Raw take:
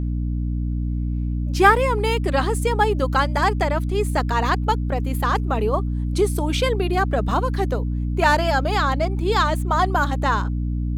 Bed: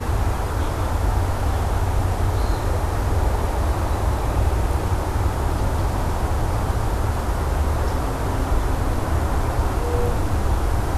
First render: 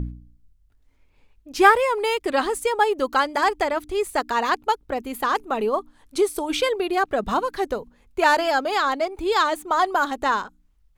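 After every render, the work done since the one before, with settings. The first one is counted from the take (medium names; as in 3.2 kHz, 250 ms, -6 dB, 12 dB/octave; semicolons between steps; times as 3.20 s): de-hum 60 Hz, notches 5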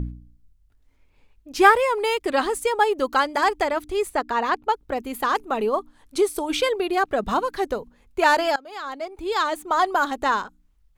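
4.09–4.76 s: treble shelf 3.9 kHz -10.5 dB; 8.56–9.78 s: fade in, from -23 dB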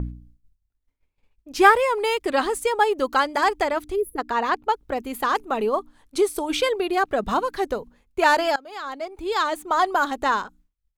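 expander -47 dBFS; 3.95–4.19 s: time-frequency box 490–9900 Hz -25 dB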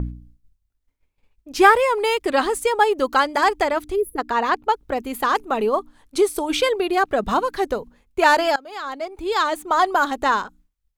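trim +2.5 dB; peak limiter -2 dBFS, peak gain reduction 2 dB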